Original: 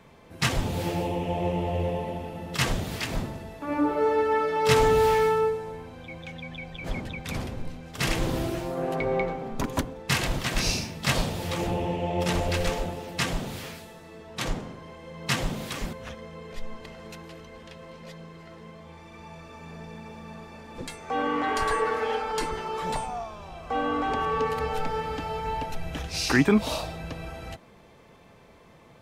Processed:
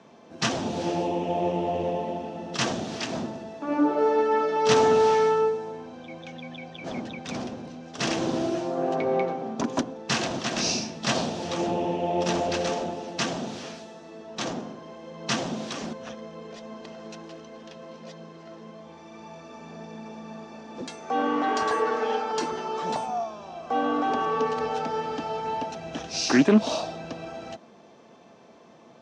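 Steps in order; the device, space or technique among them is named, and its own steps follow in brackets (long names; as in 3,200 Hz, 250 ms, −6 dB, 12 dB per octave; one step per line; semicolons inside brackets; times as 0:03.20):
full-range speaker at full volume (highs frequency-modulated by the lows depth 0.2 ms; loudspeaker in its box 190–7,000 Hz, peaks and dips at 230 Hz +7 dB, 340 Hz +4 dB, 690 Hz +6 dB, 2,100 Hz −6 dB, 5,900 Hz +6 dB)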